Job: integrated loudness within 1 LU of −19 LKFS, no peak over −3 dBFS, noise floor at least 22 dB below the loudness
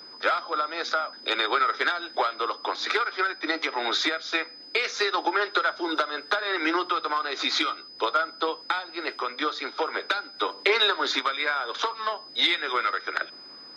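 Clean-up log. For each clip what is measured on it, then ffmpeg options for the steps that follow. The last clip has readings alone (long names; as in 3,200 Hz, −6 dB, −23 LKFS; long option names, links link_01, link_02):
interfering tone 5,000 Hz; level of the tone −43 dBFS; integrated loudness −26.0 LKFS; sample peak −7.0 dBFS; target loudness −19.0 LKFS
→ -af "bandreject=frequency=5000:width=30"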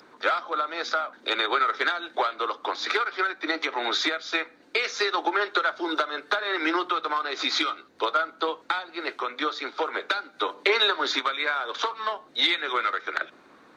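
interfering tone none found; integrated loudness −26.5 LKFS; sample peak −7.0 dBFS; target loudness −19.0 LKFS
→ -af "volume=7.5dB,alimiter=limit=-3dB:level=0:latency=1"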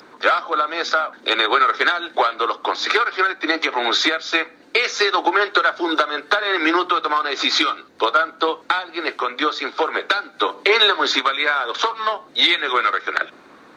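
integrated loudness −19.0 LKFS; sample peak −3.0 dBFS; background noise floor −47 dBFS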